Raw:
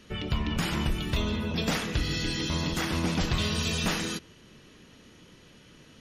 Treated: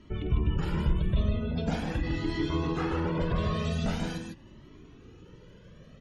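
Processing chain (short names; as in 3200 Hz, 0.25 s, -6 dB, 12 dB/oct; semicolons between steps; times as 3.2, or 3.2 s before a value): spectral gate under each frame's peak -25 dB strong; tilt shelf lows +7 dB, about 1300 Hz; in parallel at -2 dB: compressor, threshold -30 dBFS, peak gain reduction 13.5 dB; 1.9–3.65 on the sum: overdrive pedal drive 16 dB, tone 1200 Hz, clips at -10 dBFS; on a send: loudspeakers at several distances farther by 17 m -10 dB, 52 m -4 dB; on the sum: cascading flanger rising 0.43 Hz; gain -5 dB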